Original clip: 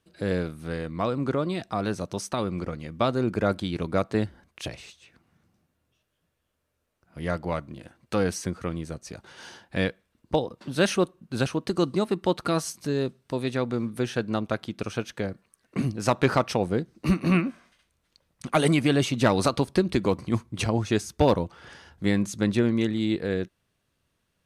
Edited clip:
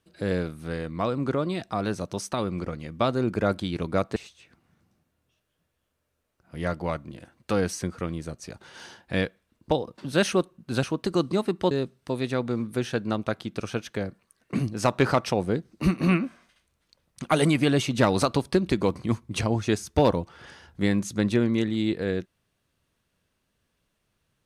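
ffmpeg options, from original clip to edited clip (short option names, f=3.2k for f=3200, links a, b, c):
-filter_complex "[0:a]asplit=3[a][b][c];[a]atrim=end=4.162[d];[b]atrim=start=4.788:end=12.342[e];[c]atrim=start=12.938[f];[d][e]acrossfade=d=0.004:c1=hsin:c2=hsin[g];[g][f]acrossfade=d=0.004:c1=hsin:c2=hsin"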